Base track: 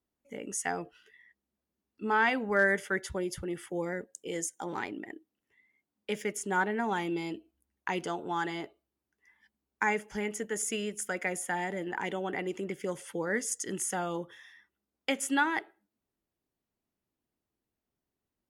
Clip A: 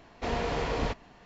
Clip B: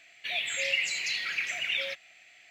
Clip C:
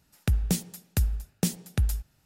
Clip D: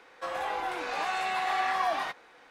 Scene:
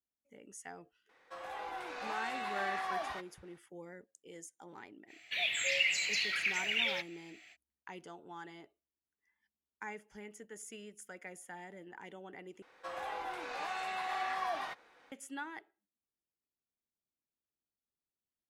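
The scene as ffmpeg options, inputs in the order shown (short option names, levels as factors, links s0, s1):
-filter_complex "[4:a]asplit=2[s0][s1];[0:a]volume=0.168[s2];[s0]dynaudnorm=f=190:g=5:m=1.5[s3];[s2]asplit=2[s4][s5];[s4]atrim=end=12.624[s6];[s1]atrim=end=2.5,asetpts=PTS-STARTPTS,volume=0.398[s7];[s5]atrim=start=15.116[s8];[s3]atrim=end=2.5,asetpts=PTS-STARTPTS,volume=0.237,afade=t=in:d=0.004:c=hsin,afade=t=out:st=2.496:d=0.004:c=hsin,adelay=1090[s9];[2:a]atrim=end=2.5,asetpts=PTS-STARTPTS,volume=0.794,afade=t=in:d=0.05,afade=t=out:st=2.45:d=0.05,adelay=5070[s10];[s6][s7]acrossfade=d=0.004:c1=hsin:c2=hsin[s11];[s11][s8]acrossfade=d=0.004:c1=hsin:c2=hsin[s12];[s12][s9][s10]amix=inputs=3:normalize=0"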